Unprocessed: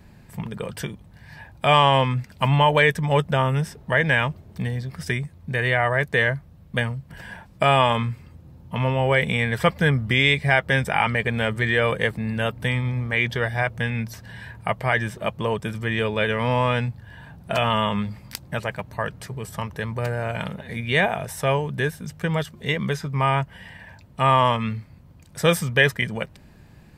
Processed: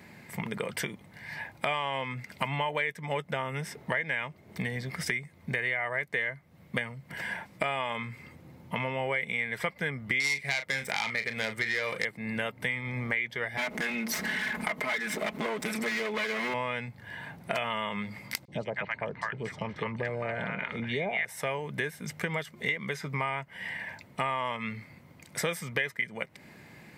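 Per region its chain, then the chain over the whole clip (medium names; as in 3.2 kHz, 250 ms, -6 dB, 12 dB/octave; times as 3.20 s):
10.20–12.05 s: self-modulated delay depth 0.16 ms + treble shelf 3.8 kHz +8.5 dB + doubling 36 ms -9.5 dB
13.57–16.54 s: comb filter that takes the minimum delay 4.7 ms + peaking EQ 110 Hz -14 dB 0.29 oct + level flattener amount 70%
18.45–21.25 s: distance through air 150 m + three bands offset in time highs, lows, mids 30/240 ms, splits 880/3400 Hz
whole clip: Bessel high-pass 230 Hz, order 2; peaking EQ 2.1 kHz +13 dB 0.23 oct; compression 5:1, threshold -32 dBFS; trim +2.5 dB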